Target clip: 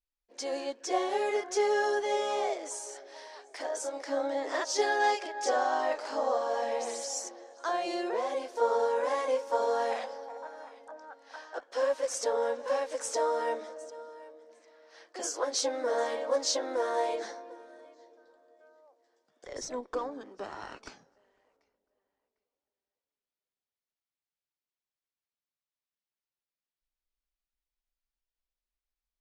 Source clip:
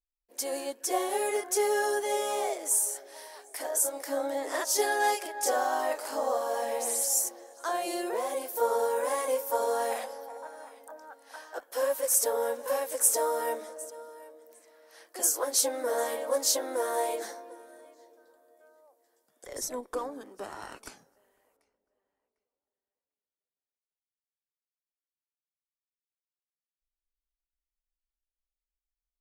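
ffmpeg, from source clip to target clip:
ffmpeg -i in.wav -af "lowpass=frequency=5900:width=0.5412,lowpass=frequency=5900:width=1.3066" out.wav

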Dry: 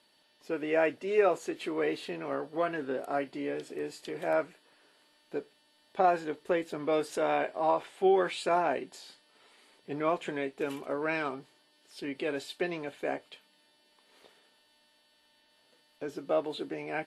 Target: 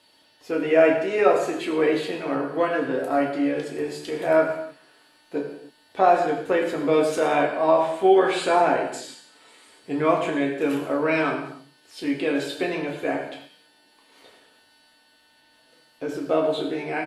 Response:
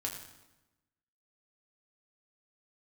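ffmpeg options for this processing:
-filter_complex "[0:a]asettb=1/sr,asplit=3[link_01][link_02][link_03];[link_01]atrim=end=8.834[link_04];[link_02]atrim=start=8.83:end=10.15,asetpts=PTS-STARTPTS,afade=type=in:duration=0.004:curve=qsin,afade=type=out:start_time=1.316:duration=0.004:curve=qsin,equalizer=frequency=7800:width=2.1:gain=7.5[link_05];[link_03]atrim=start=10.146[link_06];[link_04][link_05]acrossfade=duration=0.004:curve1=hsin:curve2=qsin[link_07];[link_07][link_06]acrossfade=duration=0.004:curve1=qsin:curve2=hsin,asplit=2[link_08][link_09];[link_09]adelay=174.9,volume=-30dB,highshelf=frequency=4000:gain=-3.94[link_10];[link_08][link_10]amix=inputs=2:normalize=0[link_11];[1:a]atrim=start_sample=2205,afade=type=out:start_time=0.36:duration=0.01,atrim=end_sample=16317[link_12];[link_11][link_12]afir=irnorm=-1:irlink=0,volume=7.5dB"

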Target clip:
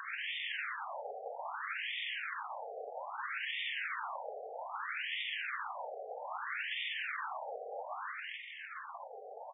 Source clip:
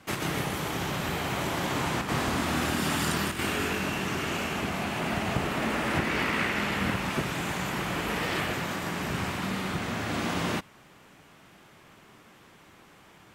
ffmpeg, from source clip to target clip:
ffmpeg -i in.wav -af "acompressor=mode=upward:threshold=-48dB:ratio=2.5,aecho=1:1:376|752|1128|1504|1880:0.316|0.149|0.0699|0.0328|0.0154,alimiter=limit=-24dB:level=0:latency=1:release=26,aeval=exprs='(tanh(25.1*val(0)+0.2)-tanh(0.2))/25.1':channel_layout=same,afftdn=noise_reduction=14:noise_floor=-55,acompressor=threshold=-44dB:ratio=5,aeval=exprs='(mod(141*val(0)+1,2)-1)/141':channel_layout=same,atempo=1.4,afftfilt=real='re*between(b*sr/1024,560*pow(2600/560,0.5+0.5*sin(2*PI*0.62*pts/sr))/1.41,560*pow(2600/560,0.5+0.5*sin(2*PI*0.62*pts/sr))*1.41)':imag='im*between(b*sr/1024,560*pow(2600/560,0.5+0.5*sin(2*PI*0.62*pts/sr))/1.41,560*pow(2600/560,0.5+0.5*sin(2*PI*0.62*pts/sr))*1.41)':win_size=1024:overlap=0.75,volume=15.5dB" out.wav

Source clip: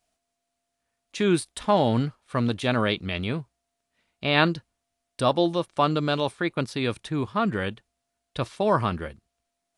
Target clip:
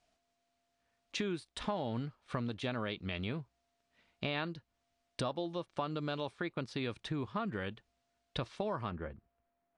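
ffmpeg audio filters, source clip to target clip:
ffmpeg -i in.wav -af "asetnsamples=nb_out_samples=441:pad=0,asendcmd='8.91 lowpass f 1600',lowpass=5600,acompressor=threshold=-36dB:ratio=6,volume=1dB" out.wav

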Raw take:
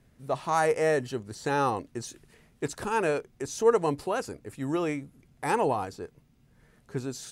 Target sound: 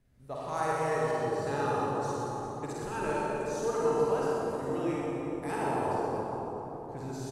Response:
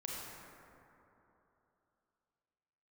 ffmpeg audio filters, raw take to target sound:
-filter_complex "[0:a]lowshelf=frequency=64:gain=9,aecho=1:1:50|125|237.5|406.2|659.4:0.631|0.398|0.251|0.158|0.1[link_01];[1:a]atrim=start_sample=2205,asetrate=29106,aresample=44100[link_02];[link_01][link_02]afir=irnorm=-1:irlink=0,volume=-8.5dB"

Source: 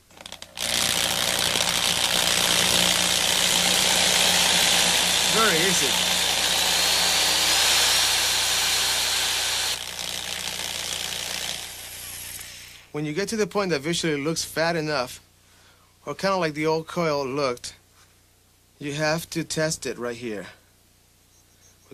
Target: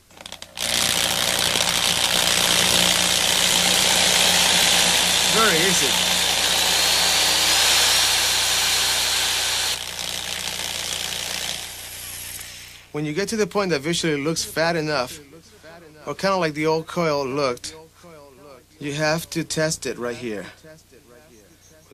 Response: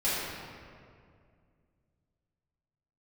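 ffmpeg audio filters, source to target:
-filter_complex "[0:a]asplit=2[link_01][link_02];[link_02]adelay=1068,lowpass=frequency=3900:poles=1,volume=-23dB,asplit=2[link_03][link_04];[link_04]adelay=1068,lowpass=frequency=3900:poles=1,volume=0.36[link_05];[link_01][link_03][link_05]amix=inputs=3:normalize=0,volume=2.5dB"

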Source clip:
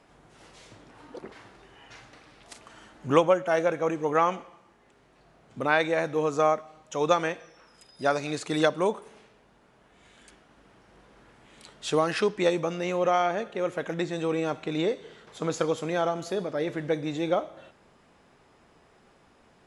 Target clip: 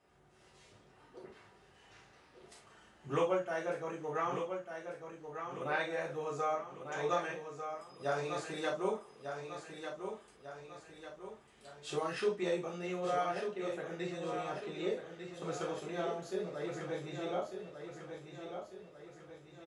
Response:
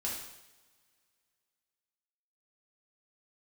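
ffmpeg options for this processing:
-filter_complex "[0:a]aecho=1:1:1197|2394|3591|4788|5985|7182:0.422|0.202|0.0972|0.0466|0.0224|0.0107[link_01];[1:a]atrim=start_sample=2205,atrim=end_sample=6615,asetrate=79380,aresample=44100[link_02];[link_01][link_02]afir=irnorm=-1:irlink=0,volume=-8dB"

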